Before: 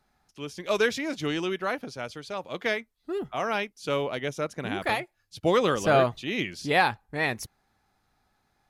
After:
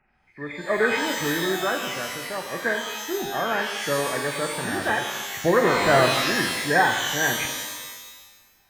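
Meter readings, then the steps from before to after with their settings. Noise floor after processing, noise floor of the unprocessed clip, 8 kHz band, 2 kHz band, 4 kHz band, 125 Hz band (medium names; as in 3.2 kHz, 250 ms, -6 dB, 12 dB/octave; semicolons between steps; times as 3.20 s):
-60 dBFS, -73 dBFS, +13.0 dB, +7.0 dB, +7.5 dB, +2.5 dB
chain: knee-point frequency compression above 1.5 kHz 4:1; pitch-shifted reverb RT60 1.2 s, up +12 st, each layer -2 dB, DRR 4.5 dB; trim +1.5 dB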